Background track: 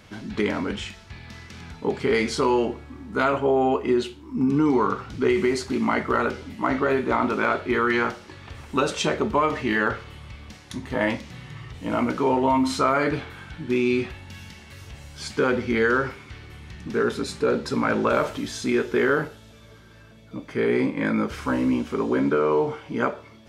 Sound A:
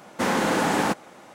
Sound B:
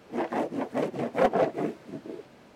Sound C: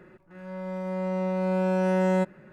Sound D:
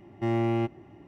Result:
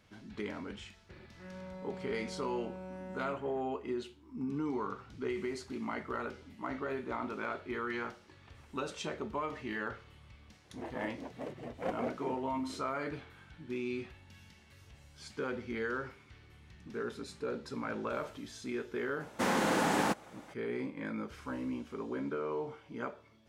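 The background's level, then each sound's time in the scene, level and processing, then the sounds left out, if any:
background track −15.5 dB
0:01.09: mix in C −4 dB + downward compressor, threshold −39 dBFS
0:10.64: mix in B −14 dB
0:19.20: mix in A −7 dB
not used: D

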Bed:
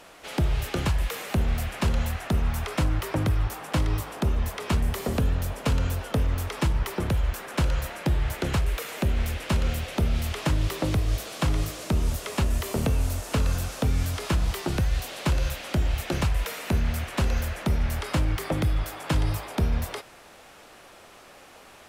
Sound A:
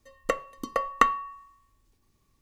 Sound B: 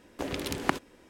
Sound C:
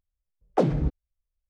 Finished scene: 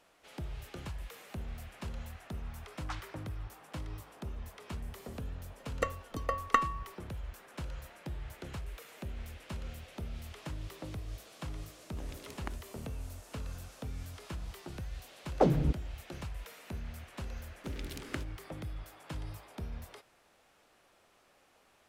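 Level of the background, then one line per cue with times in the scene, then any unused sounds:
bed −17 dB
0:02.32: mix in C −3 dB + Butterworth high-pass 1,100 Hz
0:05.53: mix in A −6 dB + downward expander −48 dBFS
0:11.78: mix in B −16.5 dB
0:14.83: mix in C −3.5 dB
0:17.45: mix in B −11 dB + Butterworth band-reject 790 Hz, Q 1

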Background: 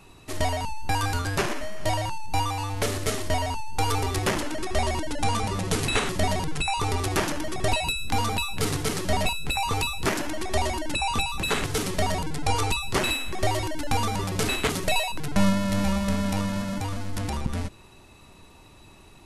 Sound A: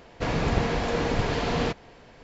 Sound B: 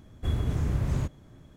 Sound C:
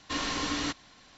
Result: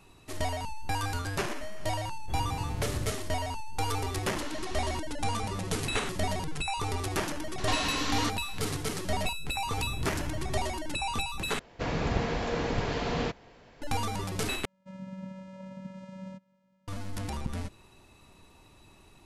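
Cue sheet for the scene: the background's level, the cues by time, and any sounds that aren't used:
background −6 dB
0:02.05: mix in B −8.5 dB
0:04.26: mix in C −12.5 dB
0:07.58: mix in C + multiband upward and downward compressor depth 70%
0:09.54: mix in B −2.5 dB + downward compressor, threshold −30 dBFS
0:11.59: overwrite with A −4.5 dB
0:14.65: overwrite with A −15.5 dB + channel vocoder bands 4, square 189 Hz

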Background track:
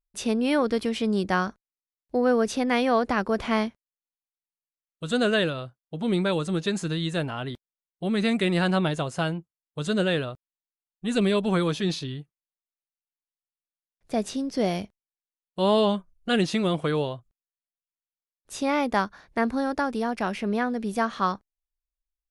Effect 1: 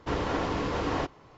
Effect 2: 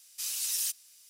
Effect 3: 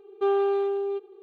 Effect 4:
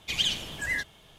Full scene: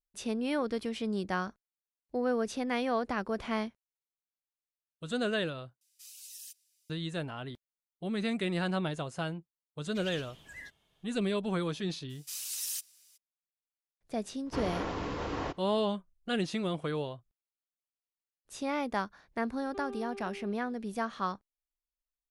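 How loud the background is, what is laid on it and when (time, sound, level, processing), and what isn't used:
background track −8.5 dB
0:05.81: overwrite with 2 −16.5 dB + gate on every frequency bin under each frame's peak −25 dB strong
0:09.87: mix in 4 −17.5 dB
0:12.09: mix in 2 −5 dB, fades 0.02 s
0:14.46: mix in 1 −6 dB
0:19.53: mix in 3 −13.5 dB + downward compressor 1.5 to 1, threshold −38 dBFS

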